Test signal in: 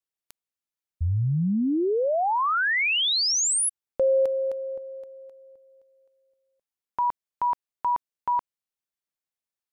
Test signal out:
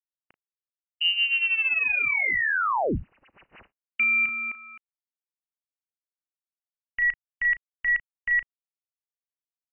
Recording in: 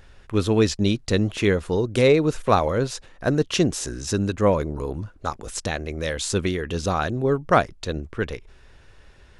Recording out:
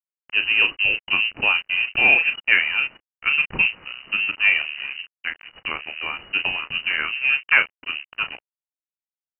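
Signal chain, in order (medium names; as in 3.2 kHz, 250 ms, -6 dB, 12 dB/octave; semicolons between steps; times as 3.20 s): doubling 35 ms -8 dB; crossover distortion -33 dBFS; frequency inversion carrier 2.9 kHz; trim +1 dB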